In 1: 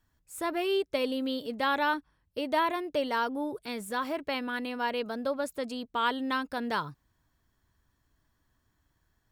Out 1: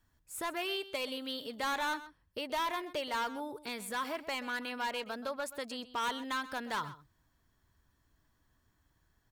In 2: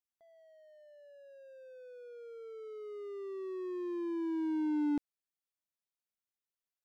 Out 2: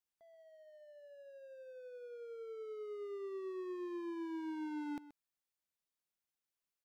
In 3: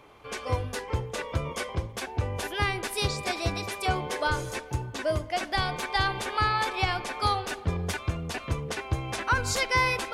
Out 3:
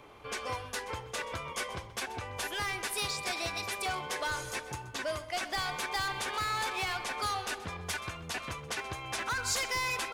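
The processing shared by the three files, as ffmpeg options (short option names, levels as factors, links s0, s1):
-filter_complex "[0:a]acrossover=split=780|5900[s0][s1][s2];[s0]acompressor=threshold=0.00794:ratio=6[s3];[s1]asoftclip=type=hard:threshold=0.0251[s4];[s3][s4][s2]amix=inputs=3:normalize=0,asplit=2[s5][s6];[s6]adelay=128.3,volume=0.178,highshelf=f=4000:g=-2.89[s7];[s5][s7]amix=inputs=2:normalize=0"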